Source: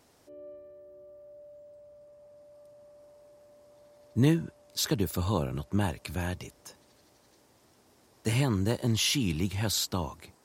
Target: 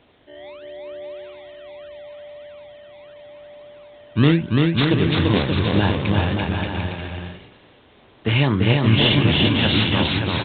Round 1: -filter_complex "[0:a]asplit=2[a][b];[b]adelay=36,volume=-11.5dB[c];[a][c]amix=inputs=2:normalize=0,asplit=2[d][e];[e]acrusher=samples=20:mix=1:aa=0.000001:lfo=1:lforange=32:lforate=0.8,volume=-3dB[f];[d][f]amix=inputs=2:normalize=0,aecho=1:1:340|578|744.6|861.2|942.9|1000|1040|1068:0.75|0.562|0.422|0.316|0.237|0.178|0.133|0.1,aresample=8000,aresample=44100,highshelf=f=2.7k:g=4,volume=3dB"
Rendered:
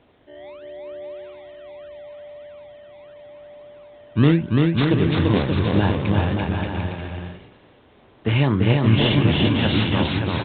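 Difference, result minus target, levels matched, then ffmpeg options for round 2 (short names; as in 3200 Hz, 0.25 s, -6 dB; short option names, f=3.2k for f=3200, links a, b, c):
4000 Hz band -4.5 dB
-filter_complex "[0:a]asplit=2[a][b];[b]adelay=36,volume=-11.5dB[c];[a][c]amix=inputs=2:normalize=0,asplit=2[d][e];[e]acrusher=samples=20:mix=1:aa=0.000001:lfo=1:lforange=32:lforate=0.8,volume=-3dB[f];[d][f]amix=inputs=2:normalize=0,aecho=1:1:340|578|744.6|861.2|942.9|1000|1040|1068:0.75|0.562|0.422|0.316|0.237|0.178|0.133|0.1,aresample=8000,aresample=44100,highshelf=f=2.7k:g=13.5,volume=3dB"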